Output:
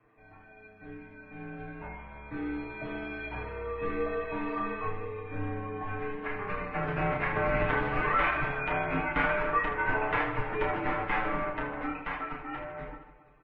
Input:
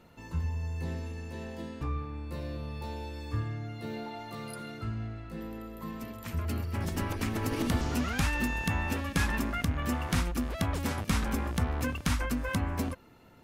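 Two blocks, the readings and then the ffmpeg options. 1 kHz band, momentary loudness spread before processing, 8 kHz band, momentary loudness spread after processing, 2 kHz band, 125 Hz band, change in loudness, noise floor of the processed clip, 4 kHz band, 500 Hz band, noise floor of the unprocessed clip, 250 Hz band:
+7.0 dB, 11 LU, under -35 dB, 15 LU, +6.0 dB, -7.0 dB, +1.5 dB, -55 dBFS, -7.5 dB, +6.5 dB, -49 dBFS, -3.5 dB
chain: -af "aemphasis=mode=production:type=50fm,flanger=delay=8.8:depth=2.1:regen=33:speed=0.19:shape=sinusoidal,dynaudnorm=f=320:g=13:m=5.62,highpass=f=230:t=q:w=0.5412,highpass=f=230:t=q:w=1.307,lowpass=f=2500:t=q:w=0.5176,lowpass=f=2500:t=q:w=0.7071,lowpass=f=2500:t=q:w=1.932,afreqshift=-230,flanger=delay=8.3:depth=3.8:regen=-89:speed=0.94:shape=triangular,acontrast=63,lowshelf=f=150:g=-7,aecho=1:1:6.7:0.84,aecho=1:1:30|78|154.8|277.7|474.3:0.631|0.398|0.251|0.158|0.1,volume=0.562" -ar 22050 -c:a libvorbis -b:a 32k

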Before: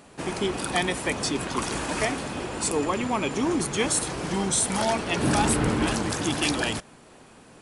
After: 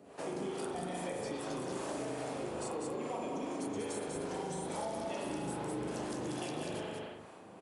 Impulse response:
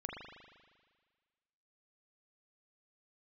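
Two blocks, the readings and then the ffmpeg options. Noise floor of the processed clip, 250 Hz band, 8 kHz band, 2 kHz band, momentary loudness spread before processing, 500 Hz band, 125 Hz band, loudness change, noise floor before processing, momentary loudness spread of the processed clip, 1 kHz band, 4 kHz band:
-53 dBFS, -12.5 dB, -19.0 dB, -18.0 dB, 6 LU, -9.0 dB, -15.0 dB, -13.5 dB, -51 dBFS, 2 LU, -12.5 dB, -18.0 dB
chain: -filter_complex "[0:a]equalizer=f=530:t=o:w=1.8:g=9,acompressor=threshold=0.0891:ratio=6,flanger=delay=9.9:depth=6:regen=-53:speed=0.27:shape=triangular[s0];[1:a]atrim=start_sample=2205,afade=t=out:st=0.35:d=0.01,atrim=end_sample=15876[s1];[s0][s1]afir=irnorm=-1:irlink=0,acrossover=split=510[s2][s3];[s2]aeval=exprs='val(0)*(1-0.7/2+0.7/2*cos(2*PI*2.4*n/s))':c=same[s4];[s3]aeval=exprs='val(0)*(1-0.7/2-0.7/2*cos(2*PI*2.4*n/s))':c=same[s5];[s4][s5]amix=inputs=2:normalize=0,highpass=80,aecho=1:1:188:0.531,acrossover=split=870|4200[s6][s7][s8];[s6]acompressor=threshold=0.0141:ratio=4[s9];[s7]acompressor=threshold=0.00282:ratio=4[s10];[s8]acompressor=threshold=0.00398:ratio=4[s11];[s9][s10][s11]amix=inputs=3:normalize=0"

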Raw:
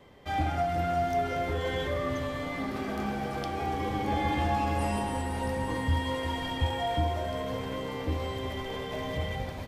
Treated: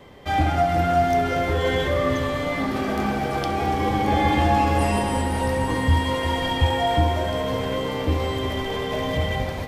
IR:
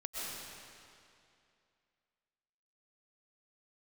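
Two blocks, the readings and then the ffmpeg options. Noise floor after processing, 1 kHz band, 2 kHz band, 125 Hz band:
-28 dBFS, +8.5 dB, +9.0 dB, +8.5 dB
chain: -filter_complex "[0:a]asplit=2[s0][s1];[s1]highpass=f=210:w=0.5412,highpass=f=210:w=1.3066[s2];[1:a]atrim=start_sample=2205,adelay=67[s3];[s2][s3]afir=irnorm=-1:irlink=0,volume=0.224[s4];[s0][s4]amix=inputs=2:normalize=0,volume=2.66"

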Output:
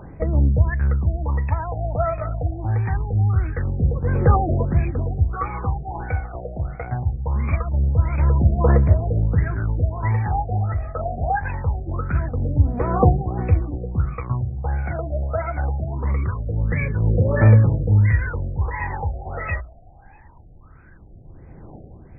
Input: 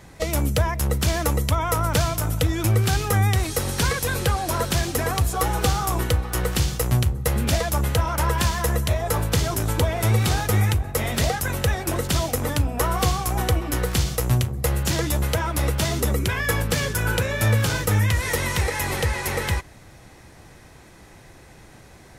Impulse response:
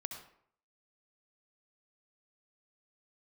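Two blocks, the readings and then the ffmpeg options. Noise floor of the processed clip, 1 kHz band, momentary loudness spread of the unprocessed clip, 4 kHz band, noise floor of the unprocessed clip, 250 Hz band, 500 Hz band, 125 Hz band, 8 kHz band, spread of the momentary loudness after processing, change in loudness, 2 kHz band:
-45 dBFS, -1.0 dB, 3 LU, under -40 dB, -47 dBFS, +0.5 dB, -1.0 dB, +3.5 dB, under -40 dB, 10 LU, +1.0 dB, -5.5 dB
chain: -af "aphaser=in_gain=1:out_gain=1:delay=1.6:decay=0.78:speed=0.23:type=triangular,bandreject=f=60:t=h:w=6,bandreject=f=120:t=h:w=6,bandreject=f=180:t=h:w=6,afftfilt=real='re*lt(b*sr/1024,760*pow(2600/760,0.5+0.5*sin(2*PI*1.5*pts/sr)))':imag='im*lt(b*sr/1024,760*pow(2600/760,0.5+0.5*sin(2*PI*1.5*pts/sr)))':win_size=1024:overlap=0.75,volume=0.631"

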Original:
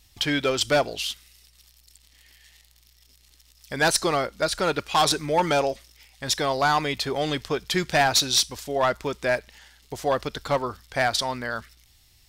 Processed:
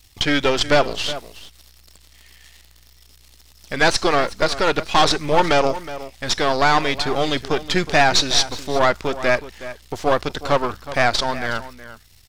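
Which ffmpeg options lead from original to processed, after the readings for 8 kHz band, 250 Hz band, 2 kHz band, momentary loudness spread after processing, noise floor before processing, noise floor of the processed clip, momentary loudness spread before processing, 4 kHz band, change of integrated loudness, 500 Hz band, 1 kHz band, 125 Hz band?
0.0 dB, +5.5 dB, +6.0 dB, 12 LU, -59 dBFS, -51 dBFS, 10 LU, +4.0 dB, +4.5 dB, +5.0 dB, +5.0 dB, +4.5 dB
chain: -filter_complex "[0:a]aeval=exprs='if(lt(val(0),0),0.251*val(0),val(0))':c=same,asplit=2[s0][s1];[s1]adelay=367.3,volume=0.2,highshelf=f=4000:g=-8.27[s2];[s0][s2]amix=inputs=2:normalize=0,acrossover=split=6800[s3][s4];[s4]acompressor=threshold=0.00178:ratio=4:attack=1:release=60[s5];[s3][s5]amix=inputs=2:normalize=0,volume=2.66"

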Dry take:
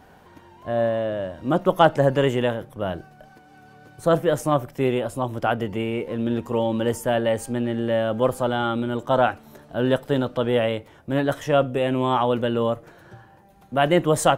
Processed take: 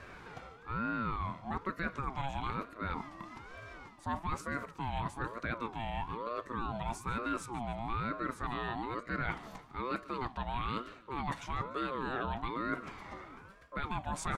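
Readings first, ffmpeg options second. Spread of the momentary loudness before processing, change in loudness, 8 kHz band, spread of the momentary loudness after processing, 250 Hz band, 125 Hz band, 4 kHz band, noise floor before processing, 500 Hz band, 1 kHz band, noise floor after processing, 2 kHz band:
8 LU, -15.0 dB, -15.0 dB, 11 LU, -16.0 dB, -14.0 dB, -15.5 dB, -51 dBFS, -22.5 dB, -11.0 dB, -55 dBFS, -9.0 dB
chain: -af "alimiter=limit=0.224:level=0:latency=1:release=76,areverse,acompressor=threshold=0.0158:ratio=5,areverse,highpass=240,lowpass=7100,aecho=1:1:147|294|441:0.119|0.044|0.0163,aeval=exprs='val(0)*sin(2*PI*630*n/s+630*0.35/1.1*sin(2*PI*1.1*n/s))':c=same,volume=1.78"

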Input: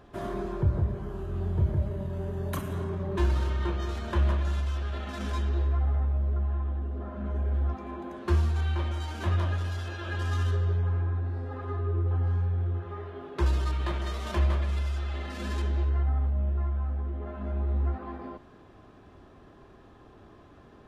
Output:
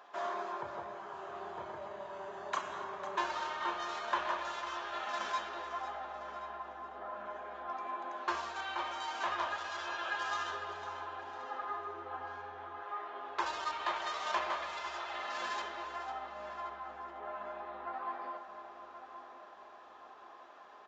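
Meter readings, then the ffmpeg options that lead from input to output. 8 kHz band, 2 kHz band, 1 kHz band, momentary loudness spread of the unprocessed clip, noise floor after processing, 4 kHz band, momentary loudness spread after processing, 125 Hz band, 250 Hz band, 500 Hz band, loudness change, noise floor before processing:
no reading, +2.0 dB, +4.5 dB, 8 LU, -54 dBFS, +1.0 dB, 12 LU, under -35 dB, -16.0 dB, -6.0 dB, -9.0 dB, -53 dBFS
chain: -filter_complex "[0:a]highpass=f=860:t=q:w=1.7,asplit=2[s0][s1];[s1]adelay=1077,lowpass=f=1600:p=1,volume=0.316,asplit=2[s2][s3];[s3]adelay=1077,lowpass=f=1600:p=1,volume=0.51,asplit=2[s4][s5];[s5]adelay=1077,lowpass=f=1600:p=1,volume=0.51,asplit=2[s6][s7];[s7]adelay=1077,lowpass=f=1600:p=1,volume=0.51,asplit=2[s8][s9];[s9]adelay=1077,lowpass=f=1600:p=1,volume=0.51,asplit=2[s10][s11];[s11]adelay=1077,lowpass=f=1600:p=1,volume=0.51[s12];[s2][s4][s6][s8][s10][s12]amix=inputs=6:normalize=0[s13];[s0][s13]amix=inputs=2:normalize=0,aresample=16000,aresample=44100,asplit=2[s14][s15];[s15]aecho=0:1:501|1002|1503|2004:0.237|0.0925|0.0361|0.0141[s16];[s14][s16]amix=inputs=2:normalize=0"

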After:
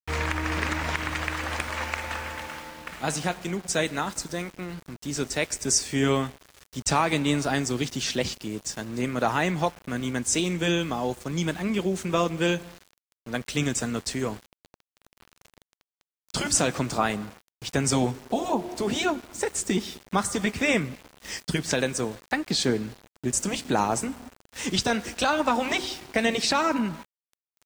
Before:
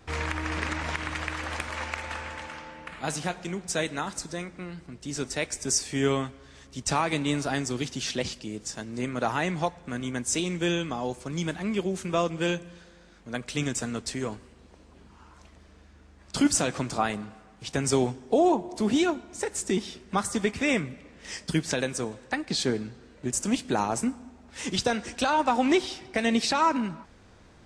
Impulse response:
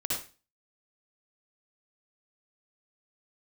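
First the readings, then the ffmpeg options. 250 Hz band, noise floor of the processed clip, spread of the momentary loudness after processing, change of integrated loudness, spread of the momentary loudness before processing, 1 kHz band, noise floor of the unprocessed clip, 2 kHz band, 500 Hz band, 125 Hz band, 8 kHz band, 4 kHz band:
+0.5 dB, under -85 dBFS, 11 LU, +1.5 dB, 13 LU, +1.0 dB, -54 dBFS, +3.0 dB, +1.0 dB, +2.5 dB, +3.0 dB, +3.0 dB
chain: -af "afftfilt=real='re*lt(hypot(re,im),0.631)':imag='im*lt(hypot(re,im),0.631)':win_size=1024:overlap=0.75,aeval=exprs='val(0)*gte(abs(val(0)),0.00631)':c=same,volume=1.41"

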